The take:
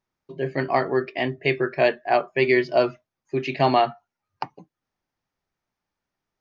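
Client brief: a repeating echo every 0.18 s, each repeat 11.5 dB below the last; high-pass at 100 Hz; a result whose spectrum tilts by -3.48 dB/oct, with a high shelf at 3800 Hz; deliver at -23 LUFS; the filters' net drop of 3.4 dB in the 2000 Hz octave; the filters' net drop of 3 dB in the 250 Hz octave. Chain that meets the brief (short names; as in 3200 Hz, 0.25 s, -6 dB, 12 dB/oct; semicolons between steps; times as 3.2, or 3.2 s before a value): HPF 100 Hz; bell 250 Hz -4.5 dB; bell 2000 Hz -5 dB; high shelf 3800 Hz +4 dB; feedback echo 0.18 s, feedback 27%, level -11.5 dB; gain +1.5 dB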